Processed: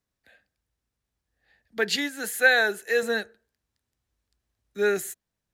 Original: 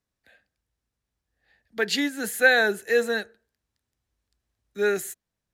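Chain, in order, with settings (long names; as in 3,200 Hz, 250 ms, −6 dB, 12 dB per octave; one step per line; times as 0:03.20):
0:01.96–0:03.03: low-shelf EQ 270 Hz −12 dB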